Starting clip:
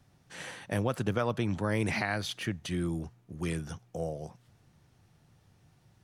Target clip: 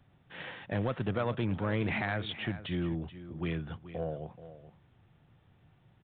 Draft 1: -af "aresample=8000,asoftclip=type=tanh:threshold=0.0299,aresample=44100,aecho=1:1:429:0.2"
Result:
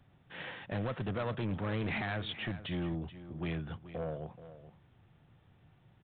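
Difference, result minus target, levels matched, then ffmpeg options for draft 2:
saturation: distortion +8 dB
-af "aresample=8000,asoftclip=type=tanh:threshold=0.075,aresample=44100,aecho=1:1:429:0.2"

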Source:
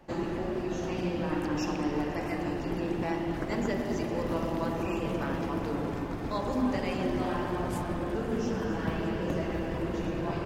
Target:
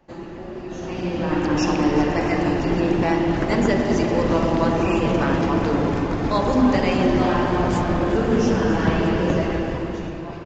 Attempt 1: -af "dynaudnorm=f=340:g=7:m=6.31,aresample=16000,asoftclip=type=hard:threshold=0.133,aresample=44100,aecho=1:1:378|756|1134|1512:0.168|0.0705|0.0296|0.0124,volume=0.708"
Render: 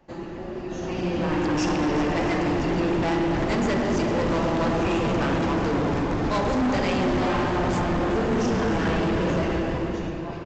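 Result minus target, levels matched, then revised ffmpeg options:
hard clipper: distortion +25 dB
-af "dynaudnorm=f=340:g=7:m=6.31,aresample=16000,asoftclip=type=hard:threshold=0.473,aresample=44100,aecho=1:1:378|756|1134|1512:0.168|0.0705|0.0296|0.0124,volume=0.708"

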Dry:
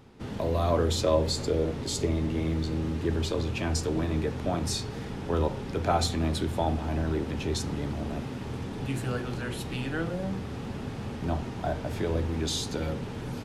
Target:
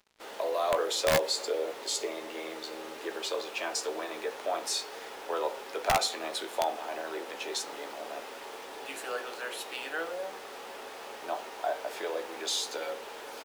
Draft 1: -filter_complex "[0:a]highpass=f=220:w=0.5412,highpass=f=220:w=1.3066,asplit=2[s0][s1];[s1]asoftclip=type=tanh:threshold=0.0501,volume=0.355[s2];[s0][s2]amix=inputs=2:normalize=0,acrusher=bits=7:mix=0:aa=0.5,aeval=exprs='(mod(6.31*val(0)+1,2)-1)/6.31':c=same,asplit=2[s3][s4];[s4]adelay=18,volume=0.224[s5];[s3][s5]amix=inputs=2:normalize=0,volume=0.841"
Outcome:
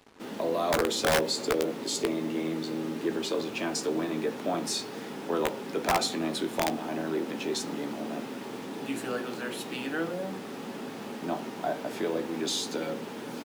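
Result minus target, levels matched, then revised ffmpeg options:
250 Hz band +11.5 dB
-filter_complex "[0:a]highpass=f=480:w=0.5412,highpass=f=480:w=1.3066,asplit=2[s0][s1];[s1]asoftclip=type=tanh:threshold=0.0501,volume=0.355[s2];[s0][s2]amix=inputs=2:normalize=0,acrusher=bits=7:mix=0:aa=0.5,aeval=exprs='(mod(6.31*val(0)+1,2)-1)/6.31':c=same,asplit=2[s3][s4];[s4]adelay=18,volume=0.224[s5];[s3][s5]amix=inputs=2:normalize=0,volume=0.841"

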